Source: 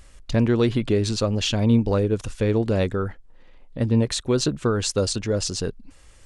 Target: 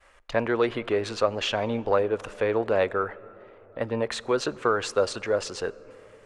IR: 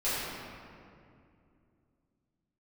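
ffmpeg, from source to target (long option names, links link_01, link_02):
-filter_complex "[0:a]acontrast=58,acrossover=split=490 2400:gain=0.0794 1 0.141[link_01][link_02][link_03];[link_01][link_02][link_03]amix=inputs=3:normalize=0,agate=range=-33dB:threshold=-54dB:ratio=3:detection=peak,asplit=2[link_04][link_05];[1:a]atrim=start_sample=2205,asetrate=22932,aresample=44100[link_06];[link_05][link_06]afir=irnorm=-1:irlink=0,volume=-34dB[link_07];[link_04][link_07]amix=inputs=2:normalize=0"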